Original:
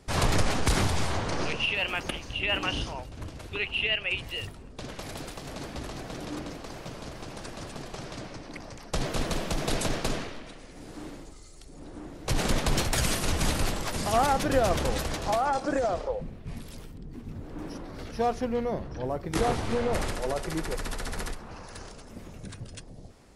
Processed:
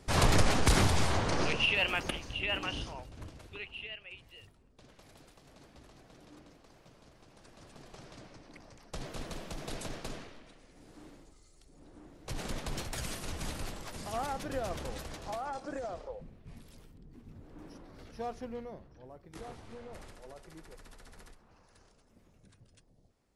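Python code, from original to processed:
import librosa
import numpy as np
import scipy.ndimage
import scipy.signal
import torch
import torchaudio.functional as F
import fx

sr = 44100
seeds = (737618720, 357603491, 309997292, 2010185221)

y = fx.gain(x, sr, db=fx.line((1.82, -0.5), (2.7, -7.0), (3.23, -7.0), (4.07, -19.0), (7.3, -19.0), (7.92, -12.0), (18.53, -12.0), (18.96, -20.0)))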